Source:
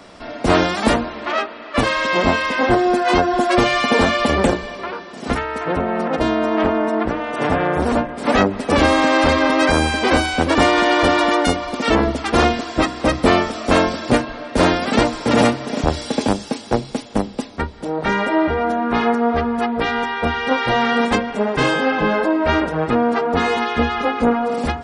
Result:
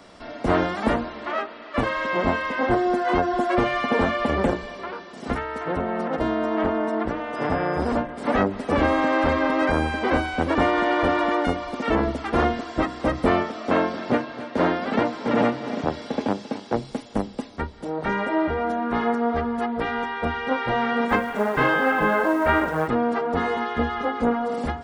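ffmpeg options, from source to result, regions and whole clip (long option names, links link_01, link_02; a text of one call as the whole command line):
ffmpeg -i in.wav -filter_complex "[0:a]asettb=1/sr,asplit=3[link_01][link_02][link_03];[link_01]atrim=end=7.354[link_04];[link_02]atrim=start=7.35:end=7.96,asetpts=PTS-STARTPTS,afade=type=in:duration=0.004:curve=qsin,afade=type=out:start_time=0.606:duration=0.004:curve=qsin,lowpass=9600,aeval=exprs='val(0)+0.01*sin(2*PI*5000*n/s)':channel_layout=same[link_05];[link_03]atrim=start=7.956[link_06];[link_04][link_05]acrossfade=duration=0.004:curve1=hsin:curve2=qsin[link_07];[link_07][link_06]acrossfade=duration=0.004:curve1=qsin:curve2=hsin,asettb=1/sr,asplit=3[link_08][link_09][link_10];[link_08]atrim=end=13.434[link_11];[link_09]atrim=start=13.43:end=16.76,asetpts=PTS-STARTPTS,afade=type=in:duration=0.004:curve=qsin,afade=type=out:start_time=3.326:duration=0.004:curve=qsin,highpass=140,lowpass=5400,aecho=1:1:269:0.168,atrim=end_sample=146853[link_12];[link_10]atrim=start=16.756[link_13];[link_11][link_12]acrossfade=duration=0.004:curve1=hsin:curve2=qsin[link_14];[link_14][link_13]acrossfade=duration=0.004:curve1=qsin:curve2=hsin,asettb=1/sr,asplit=3[link_15][link_16][link_17];[link_15]atrim=end=21.094[link_18];[link_16]atrim=start=21.09:end=22.88,asetpts=PTS-STARTPTS,afade=type=in:duration=0.004:curve=qsin,afade=type=out:start_time=1.786:duration=0.004:curve=qsin,equalizer=frequency=1500:width=0.65:gain=6.5,acrusher=bits=5:mode=log:mix=0:aa=0.000001[link_19];[link_17]atrim=start=22.876[link_20];[link_18][link_19]acrossfade=duration=0.004:curve1=hsin:curve2=qsin[link_21];[link_21][link_20]acrossfade=duration=0.004:curve1=qsin:curve2=hsin,acrossover=split=2600[link_22][link_23];[link_23]acompressor=threshold=-40dB:ratio=4:attack=1:release=60[link_24];[link_22][link_24]amix=inputs=2:normalize=0,bandreject=frequency=2500:width=20,volume=-5.5dB" out.wav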